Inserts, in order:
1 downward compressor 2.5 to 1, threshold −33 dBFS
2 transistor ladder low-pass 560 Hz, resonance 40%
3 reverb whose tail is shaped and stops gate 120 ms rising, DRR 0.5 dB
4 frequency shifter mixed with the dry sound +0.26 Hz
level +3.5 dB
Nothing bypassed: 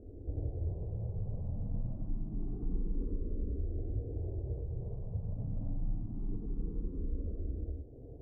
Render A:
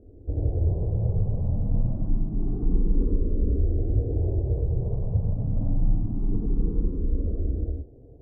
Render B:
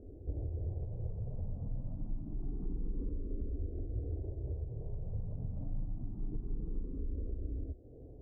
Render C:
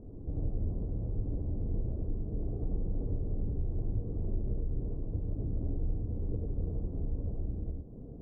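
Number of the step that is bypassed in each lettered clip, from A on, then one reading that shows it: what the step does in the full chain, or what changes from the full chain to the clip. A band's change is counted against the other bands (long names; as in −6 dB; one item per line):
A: 1, average gain reduction 11.5 dB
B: 3, change in integrated loudness −2.0 LU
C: 4, change in integrated loudness +3.0 LU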